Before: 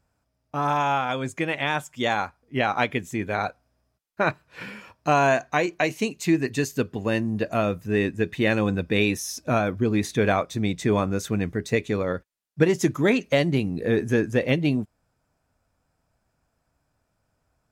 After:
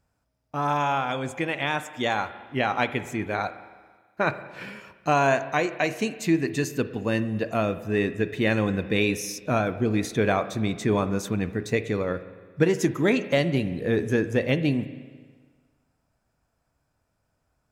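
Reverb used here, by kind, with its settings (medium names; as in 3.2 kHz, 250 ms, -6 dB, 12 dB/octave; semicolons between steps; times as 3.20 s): spring tank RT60 1.5 s, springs 36/55 ms, chirp 40 ms, DRR 12 dB; trim -1.5 dB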